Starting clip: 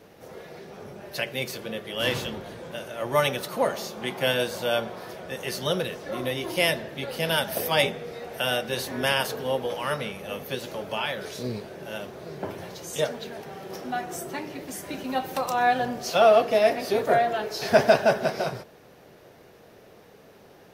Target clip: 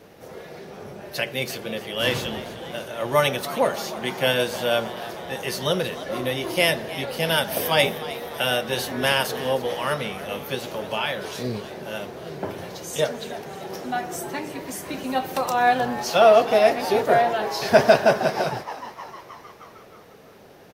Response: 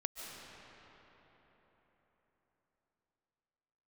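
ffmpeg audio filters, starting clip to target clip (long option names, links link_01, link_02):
-filter_complex "[0:a]asplit=7[link_01][link_02][link_03][link_04][link_05][link_06][link_07];[link_02]adelay=310,afreqshift=110,volume=-15.5dB[link_08];[link_03]adelay=620,afreqshift=220,volume=-19.8dB[link_09];[link_04]adelay=930,afreqshift=330,volume=-24.1dB[link_10];[link_05]adelay=1240,afreqshift=440,volume=-28.4dB[link_11];[link_06]adelay=1550,afreqshift=550,volume=-32.7dB[link_12];[link_07]adelay=1860,afreqshift=660,volume=-37dB[link_13];[link_01][link_08][link_09][link_10][link_11][link_12][link_13]amix=inputs=7:normalize=0,volume=3dB"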